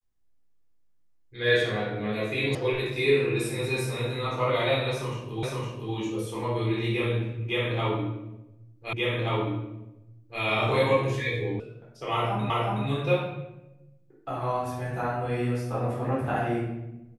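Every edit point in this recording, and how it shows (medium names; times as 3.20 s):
2.55 s: sound stops dead
5.43 s: repeat of the last 0.51 s
8.93 s: repeat of the last 1.48 s
11.60 s: sound stops dead
12.50 s: repeat of the last 0.37 s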